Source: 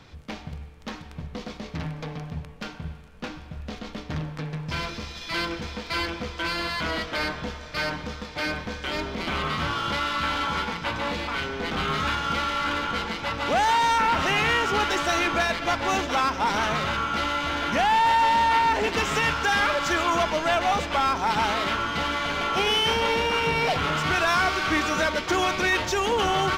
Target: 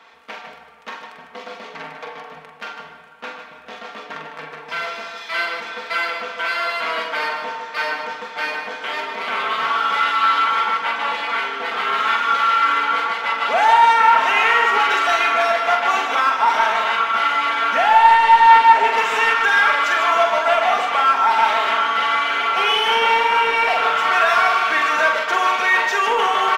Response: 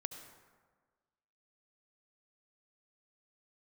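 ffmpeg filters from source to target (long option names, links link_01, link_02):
-filter_complex "[0:a]highpass=730,aecho=1:1:4.4:0.58,asoftclip=type=tanh:threshold=-11dB,aecho=1:1:44|152:0.531|0.398,asplit=2[link_01][link_02];[1:a]atrim=start_sample=2205,lowpass=3000[link_03];[link_02][link_03]afir=irnorm=-1:irlink=0,volume=7dB[link_04];[link_01][link_04]amix=inputs=2:normalize=0,volume=-2dB"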